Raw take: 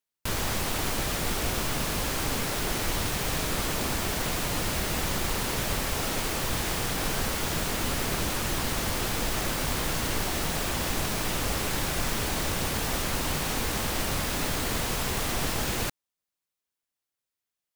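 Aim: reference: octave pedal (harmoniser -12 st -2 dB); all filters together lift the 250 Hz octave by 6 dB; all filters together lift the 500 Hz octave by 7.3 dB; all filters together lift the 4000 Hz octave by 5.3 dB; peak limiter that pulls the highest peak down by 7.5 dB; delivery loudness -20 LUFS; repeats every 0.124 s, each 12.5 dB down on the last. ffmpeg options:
-filter_complex "[0:a]equalizer=f=250:t=o:g=5.5,equalizer=f=500:t=o:g=7.5,equalizer=f=4k:t=o:g=6.5,alimiter=limit=-19dB:level=0:latency=1,aecho=1:1:124|248|372:0.237|0.0569|0.0137,asplit=2[a][b];[b]asetrate=22050,aresample=44100,atempo=2,volume=-2dB[c];[a][c]amix=inputs=2:normalize=0,volume=6dB"

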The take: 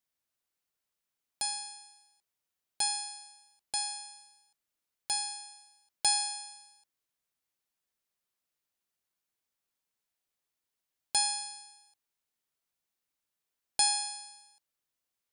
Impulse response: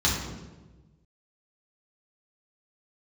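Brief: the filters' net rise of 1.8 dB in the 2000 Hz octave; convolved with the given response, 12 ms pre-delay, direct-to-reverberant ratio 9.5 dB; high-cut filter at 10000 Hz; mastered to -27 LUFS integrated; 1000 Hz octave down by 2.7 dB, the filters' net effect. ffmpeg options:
-filter_complex "[0:a]lowpass=10k,equalizer=f=1k:t=o:g=-4,equalizer=f=2k:t=o:g=3.5,asplit=2[a][b];[1:a]atrim=start_sample=2205,adelay=12[c];[b][c]afir=irnorm=-1:irlink=0,volume=-23dB[d];[a][d]amix=inputs=2:normalize=0,volume=4dB"

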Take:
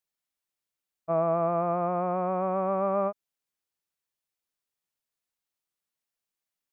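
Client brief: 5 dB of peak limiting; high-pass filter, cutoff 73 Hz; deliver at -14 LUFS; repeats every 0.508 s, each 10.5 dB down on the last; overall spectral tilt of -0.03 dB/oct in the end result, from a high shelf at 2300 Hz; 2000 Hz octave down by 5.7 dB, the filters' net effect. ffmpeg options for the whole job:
-af "highpass=73,equalizer=f=2k:t=o:g=-5.5,highshelf=f=2.3k:g=-5.5,alimiter=limit=-21dB:level=0:latency=1,aecho=1:1:508|1016|1524:0.299|0.0896|0.0269,volume=17dB"

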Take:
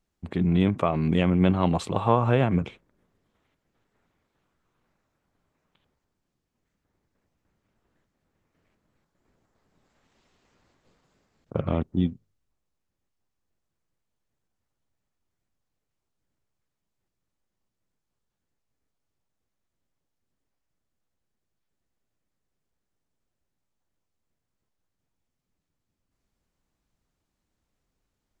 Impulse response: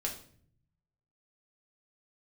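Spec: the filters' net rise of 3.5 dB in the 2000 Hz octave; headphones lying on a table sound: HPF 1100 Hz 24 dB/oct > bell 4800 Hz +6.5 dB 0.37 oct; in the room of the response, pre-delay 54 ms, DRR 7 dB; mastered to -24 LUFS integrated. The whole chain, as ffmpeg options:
-filter_complex "[0:a]equalizer=f=2k:t=o:g=4.5,asplit=2[a][b];[1:a]atrim=start_sample=2205,adelay=54[c];[b][c]afir=irnorm=-1:irlink=0,volume=-9dB[d];[a][d]amix=inputs=2:normalize=0,highpass=f=1.1k:w=0.5412,highpass=f=1.1k:w=1.3066,equalizer=f=4.8k:t=o:w=0.37:g=6.5,volume=10dB"

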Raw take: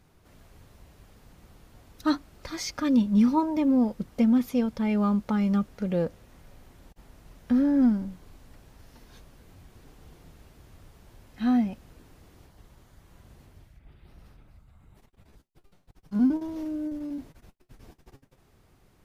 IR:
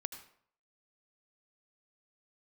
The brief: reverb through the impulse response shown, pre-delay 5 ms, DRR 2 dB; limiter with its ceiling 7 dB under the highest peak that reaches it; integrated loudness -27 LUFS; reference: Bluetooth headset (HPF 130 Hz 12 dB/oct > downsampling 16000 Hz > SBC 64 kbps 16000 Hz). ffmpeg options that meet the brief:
-filter_complex "[0:a]alimiter=limit=-19dB:level=0:latency=1,asplit=2[a][b];[1:a]atrim=start_sample=2205,adelay=5[c];[b][c]afir=irnorm=-1:irlink=0,volume=-1dB[d];[a][d]amix=inputs=2:normalize=0,highpass=130,aresample=16000,aresample=44100,volume=-1dB" -ar 16000 -c:a sbc -b:a 64k

